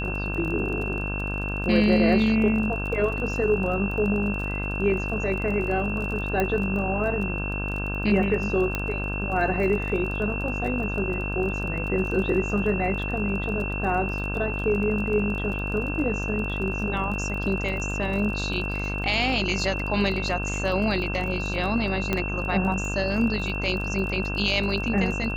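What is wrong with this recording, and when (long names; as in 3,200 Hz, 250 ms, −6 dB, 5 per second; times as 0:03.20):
mains buzz 50 Hz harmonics 33 −30 dBFS
surface crackle 27 per second −32 dBFS
whistle 2,700 Hz −31 dBFS
0:06.40: click −12 dBFS
0:08.75: click −12 dBFS
0:22.13: click −10 dBFS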